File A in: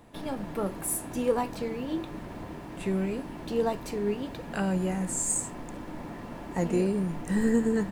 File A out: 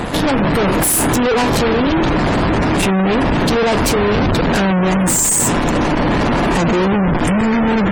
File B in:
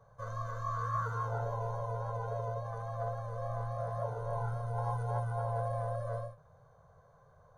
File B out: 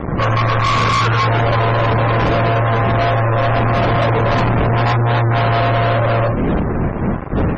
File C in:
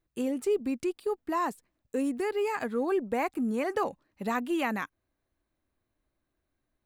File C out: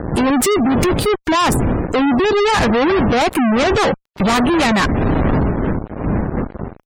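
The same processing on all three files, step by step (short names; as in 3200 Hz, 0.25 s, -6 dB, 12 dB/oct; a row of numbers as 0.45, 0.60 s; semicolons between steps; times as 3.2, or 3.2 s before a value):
wind noise 250 Hz -44 dBFS; fuzz box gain 51 dB, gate -56 dBFS; spectral gate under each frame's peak -30 dB strong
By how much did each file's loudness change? +15.5, +21.5, +15.0 LU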